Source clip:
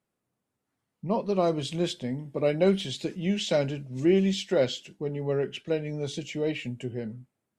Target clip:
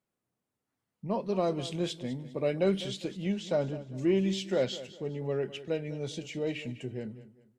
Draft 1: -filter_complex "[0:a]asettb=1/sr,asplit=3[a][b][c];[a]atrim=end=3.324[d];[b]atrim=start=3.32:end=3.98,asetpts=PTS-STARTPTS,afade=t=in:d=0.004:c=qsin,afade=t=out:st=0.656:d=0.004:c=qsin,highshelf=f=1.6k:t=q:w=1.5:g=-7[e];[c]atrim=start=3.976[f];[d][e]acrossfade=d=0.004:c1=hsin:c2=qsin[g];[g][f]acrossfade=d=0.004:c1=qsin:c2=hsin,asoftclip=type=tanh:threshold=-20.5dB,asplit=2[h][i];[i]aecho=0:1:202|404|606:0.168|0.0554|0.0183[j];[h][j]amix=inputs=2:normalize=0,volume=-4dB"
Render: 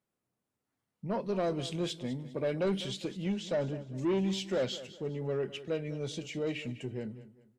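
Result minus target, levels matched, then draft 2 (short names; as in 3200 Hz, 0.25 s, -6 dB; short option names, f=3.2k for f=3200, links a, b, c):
soft clip: distortion +17 dB
-filter_complex "[0:a]asettb=1/sr,asplit=3[a][b][c];[a]atrim=end=3.324[d];[b]atrim=start=3.32:end=3.98,asetpts=PTS-STARTPTS,afade=t=in:d=0.004:c=qsin,afade=t=out:st=0.656:d=0.004:c=qsin,highshelf=f=1.6k:t=q:w=1.5:g=-7[e];[c]atrim=start=3.976[f];[d][e]acrossfade=d=0.004:c1=hsin:c2=qsin[g];[g][f]acrossfade=d=0.004:c1=qsin:c2=hsin,asoftclip=type=tanh:threshold=-9dB,asplit=2[h][i];[i]aecho=0:1:202|404|606:0.168|0.0554|0.0183[j];[h][j]amix=inputs=2:normalize=0,volume=-4dB"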